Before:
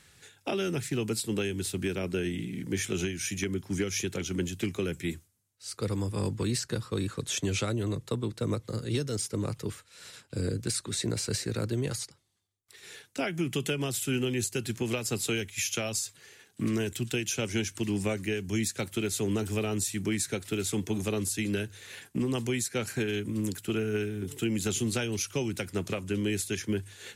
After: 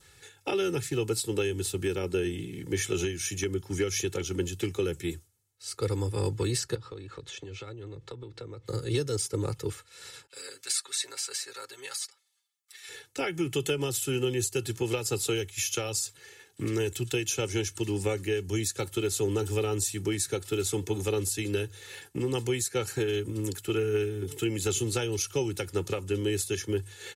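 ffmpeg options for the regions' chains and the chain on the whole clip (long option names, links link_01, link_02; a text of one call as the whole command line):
ffmpeg -i in.wav -filter_complex "[0:a]asettb=1/sr,asplit=3[link_01][link_02][link_03];[link_01]atrim=end=6.754[link_04];[link_02]atrim=start=6.75:end=8.66,asetpts=PTS-STARTPTS,afade=type=in:duration=0.004:curve=qsin,afade=type=out:start_time=1.906:duration=0.004:curve=qsin,lowpass=4500,acompressor=threshold=-39dB:ratio=16:attack=3.2:release=140:knee=1:detection=peak[link_05];[link_03]atrim=start=8.656[link_06];[link_04][link_05]acrossfade=duration=0.004:curve1=hsin:curve2=qsin[link_07];[link_07][link_06]acrossfade=duration=0.004:curve1=qsin:curve2=hsin,asettb=1/sr,asplit=3[link_08][link_09][link_10];[link_08]atrim=end=10.274[link_11];[link_09]atrim=start=10.27:end=12.89,asetpts=PTS-STARTPTS,afade=type=in:duration=0.004:curve=qsin,afade=type=out:start_time=2.616:duration=0.004:curve=qsin,highpass=1300,aecho=1:1:7.4:0.88,atrim=end_sample=115542,adynamicequalizer=threshold=0.00355:dfrequency=2000:dqfactor=0.7:tfrequency=2000:tqfactor=0.7:attack=5:release=100:ratio=0.375:range=2.5:mode=cutabove:tftype=highshelf[link_12];[link_10]atrim=start=12.886[link_13];[link_11][link_12]acrossfade=duration=0.004:curve1=hsin:curve2=qsin[link_14];[link_14][link_13]acrossfade=duration=0.004:curve1=qsin:curve2=hsin,adynamicequalizer=threshold=0.00224:dfrequency=2100:dqfactor=2.3:tfrequency=2100:tqfactor=2.3:attack=5:release=100:ratio=0.375:range=3:mode=cutabove:tftype=bell,aecho=1:1:2.3:0.69" out.wav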